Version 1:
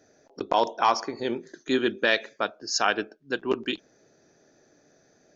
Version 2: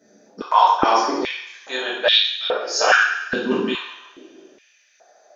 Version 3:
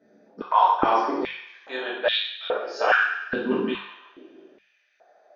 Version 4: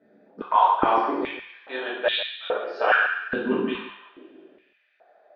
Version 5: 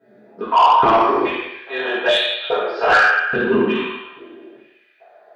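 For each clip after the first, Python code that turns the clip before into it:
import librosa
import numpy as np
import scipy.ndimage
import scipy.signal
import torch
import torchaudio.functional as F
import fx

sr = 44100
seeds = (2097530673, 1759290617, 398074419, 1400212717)

y1 = fx.rev_double_slope(x, sr, seeds[0], early_s=0.8, late_s=2.2, knee_db=-18, drr_db=-8.0)
y1 = fx.filter_held_highpass(y1, sr, hz=2.4, low_hz=210.0, high_hz=3500.0)
y1 = y1 * librosa.db_to_amplitude(-3.5)
y2 = fx.air_absorb(y1, sr, metres=310.0)
y2 = fx.hum_notches(y2, sr, base_hz=50, count=4)
y2 = y2 * librosa.db_to_amplitude(-2.5)
y3 = scipy.signal.sosfilt(scipy.signal.butter(4, 3700.0, 'lowpass', fs=sr, output='sos'), y2)
y3 = y3 + 10.0 ** (-14.0 / 20.0) * np.pad(y3, (int(144 * sr / 1000.0), 0))[:len(y3)]
y4 = fx.rev_fdn(y3, sr, rt60_s=0.78, lf_ratio=0.85, hf_ratio=0.9, size_ms=43.0, drr_db=-9.0)
y4 = 10.0 ** (-6.5 / 20.0) * np.tanh(y4 / 10.0 ** (-6.5 / 20.0))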